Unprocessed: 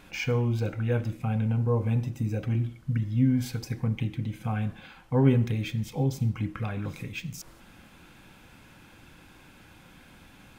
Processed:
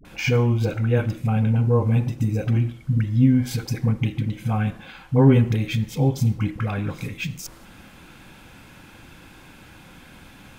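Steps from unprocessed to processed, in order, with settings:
all-pass dispersion highs, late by 50 ms, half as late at 480 Hz
level +6.5 dB

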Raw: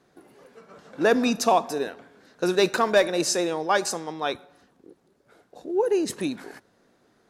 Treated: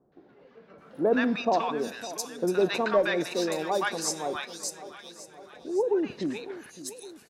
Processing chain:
three-band delay without the direct sound lows, mids, highs 120/780 ms, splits 950/4,300 Hz
feedback echo with a swinging delay time 560 ms, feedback 56%, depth 92 cents, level −15 dB
level −2.5 dB

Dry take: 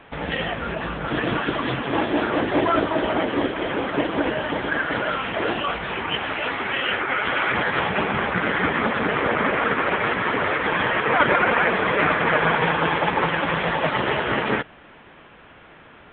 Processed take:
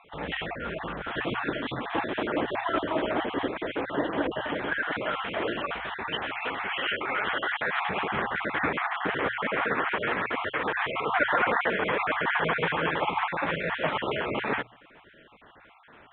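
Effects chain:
time-frequency cells dropped at random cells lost 29%
bass and treble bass −3 dB, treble −2 dB
mains-hum notches 60/120 Hz
level −4.5 dB

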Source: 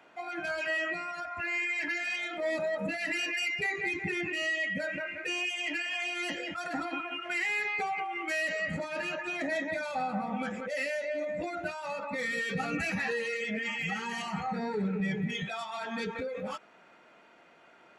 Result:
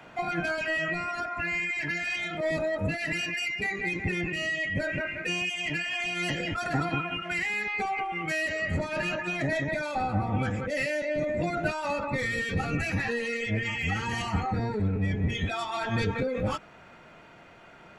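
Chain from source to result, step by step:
sub-octave generator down 1 octave, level +4 dB
speech leveller 0.5 s
level +2.5 dB

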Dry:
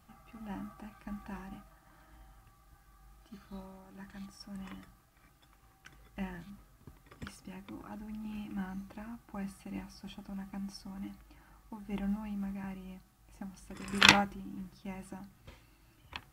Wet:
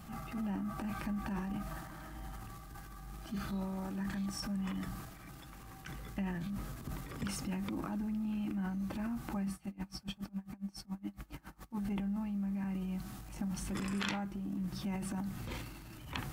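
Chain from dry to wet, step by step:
parametric band 190 Hz +6.5 dB 1.4 octaves
transient designer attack −7 dB, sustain +8 dB
downward compressor 12 to 1, threshold −45 dBFS, peak gain reduction 27.5 dB
0:09.54–0:11.75: tremolo with a sine in dB 7.2 Hz, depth 26 dB
level +10.5 dB

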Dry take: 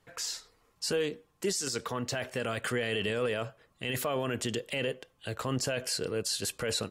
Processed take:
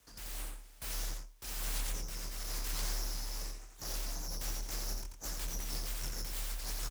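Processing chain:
Butterworth high-pass 2,200 Hz 96 dB per octave
brickwall limiter −30.5 dBFS, peak gain reduction 10.5 dB
sine wavefolder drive 16 dB, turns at −30 dBFS
double-tracking delay 23 ms −5 dB
rotating-speaker cabinet horn 1 Hz, later 6.3 Hz, at 0:04.10
full-wave rectification
frequency shifter +36 Hz
single-tap delay 87 ms −4.5 dB
level −3 dB

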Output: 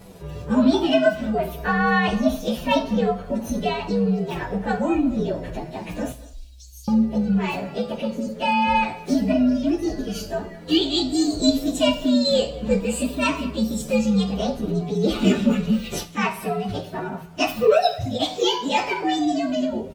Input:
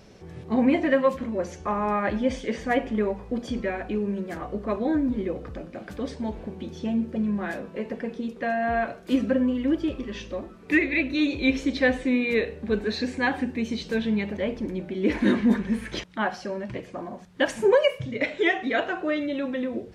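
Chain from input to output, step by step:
partials spread apart or drawn together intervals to 124%
in parallel at −1 dB: downward compressor, threshold −34 dBFS, peak gain reduction 15.5 dB
0:06.12–0:06.88: on the sum: inverse Chebyshev band-stop filter 230–860 Hz, stop band 80 dB
far-end echo of a speakerphone 210 ms, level −19 dB
coupled-rooms reverb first 0.41 s, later 1.5 s, from −24 dB, DRR 9.5 dB
level +4 dB

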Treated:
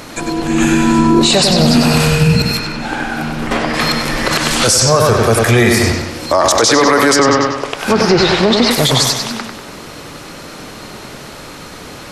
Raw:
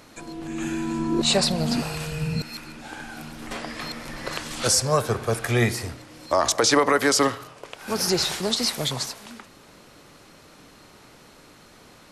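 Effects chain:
0:02.58–0:03.73: high-shelf EQ 5,200 Hz → 3,600 Hz −10.5 dB
0:07.15–0:08.71: treble cut that deepens with the level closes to 2,700 Hz, closed at −22.5 dBFS
bucket-brigade delay 96 ms, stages 4,096, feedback 48%, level −6 dB
boost into a limiter +18.5 dB
level −1 dB

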